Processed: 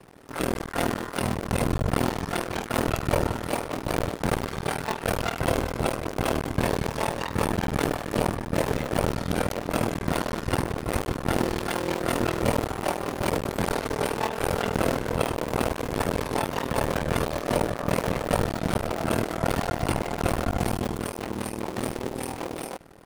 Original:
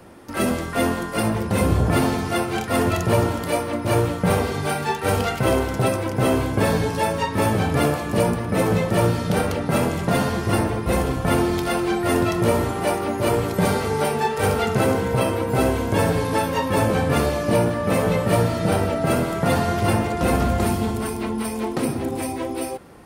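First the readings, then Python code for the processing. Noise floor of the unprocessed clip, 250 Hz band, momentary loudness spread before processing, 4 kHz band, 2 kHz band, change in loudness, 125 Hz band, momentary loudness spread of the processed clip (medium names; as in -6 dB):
-29 dBFS, -6.5 dB, 4 LU, -4.0 dB, -4.5 dB, -6.0 dB, -7.5 dB, 4 LU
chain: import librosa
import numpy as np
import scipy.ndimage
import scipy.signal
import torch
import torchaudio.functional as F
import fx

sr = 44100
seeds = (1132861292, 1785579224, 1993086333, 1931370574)

y = fx.cycle_switch(x, sr, every=2, mode='muted')
y = y * np.sin(2.0 * np.pi * 20.0 * np.arange(len(y)) / sr)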